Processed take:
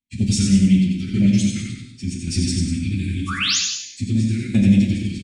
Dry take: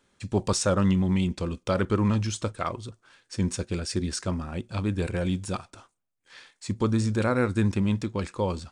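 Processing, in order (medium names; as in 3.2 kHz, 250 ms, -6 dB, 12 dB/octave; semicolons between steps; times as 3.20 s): elliptic band-stop 270–2200 Hz, stop band 50 dB; expander -48 dBFS; treble shelf 3.7 kHz -3.5 dB; painted sound rise, 5.47–5.97 s, 1.1–7.3 kHz -28 dBFS; plain phase-vocoder stretch 0.6×; tremolo saw down 0.88 Hz, depth 70%; sine folder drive 5 dB, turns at -12.5 dBFS; loudspeakers at several distances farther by 31 m -5 dB, 66 m -10 dB; gated-style reverb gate 310 ms falling, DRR 2 dB; trim +3.5 dB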